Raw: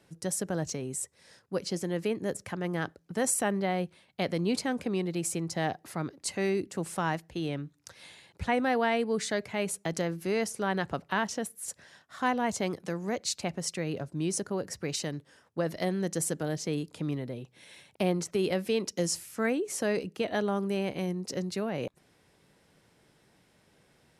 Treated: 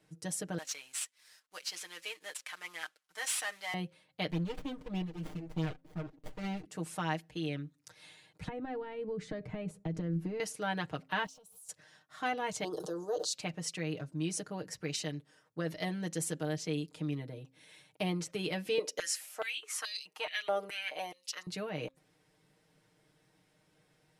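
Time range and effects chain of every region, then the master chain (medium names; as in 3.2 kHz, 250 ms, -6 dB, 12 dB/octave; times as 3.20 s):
0.58–3.74 s: CVSD coder 64 kbps + high-pass 1.3 kHz + waveshaping leveller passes 1
4.30–6.65 s: phase shifter stages 12, 3.3 Hz, lowest notch 200–1700 Hz + sliding maximum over 33 samples
8.48–10.40 s: compression 16:1, threshold -33 dBFS + tilt EQ -4.5 dB/octave
11.26–11.69 s: jump at every zero crossing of -47.5 dBFS + compression 12:1, threshold -45 dBFS + static phaser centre 760 Hz, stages 4
12.64–13.33 s: Butterworth band-stop 2.2 kHz, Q 0.87 + resonant low shelf 300 Hz -8.5 dB, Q 3 + decay stretcher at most 46 dB/s
18.78–21.47 s: treble shelf 11 kHz +7 dB + step-sequenced high-pass 4.7 Hz 490–4200 Hz
whole clip: comb 6.5 ms, depth 80%; de-hum 265.7 Hz, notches 2; dynamic bell 2.9 kHz, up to +6 dB, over -49 dBFS, Q 1.1; trim -8 dB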